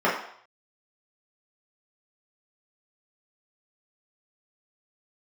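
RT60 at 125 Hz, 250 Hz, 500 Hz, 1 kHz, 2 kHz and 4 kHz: 0.40, 0.45, 0.60, 0.65, 0.65, 0.65 seconds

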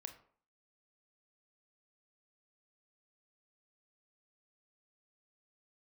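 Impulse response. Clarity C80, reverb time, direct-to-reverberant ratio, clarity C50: 15.5 dB, 0.50 s, 6.5 dB, 11.5 dB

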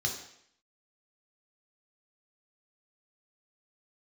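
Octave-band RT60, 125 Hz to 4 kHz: 0.60, 0.70, 0.65, 0.65, 0.70, 0.70 seconds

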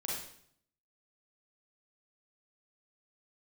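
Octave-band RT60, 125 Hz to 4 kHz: 0.85, 0.75, 0.65, 0.60, 0.60, 0.60 seconds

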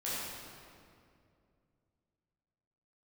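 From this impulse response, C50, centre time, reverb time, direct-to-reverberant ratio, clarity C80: −4.0 dB, 149 ms, 2.4 s, −10.5 dB, −2.0 dB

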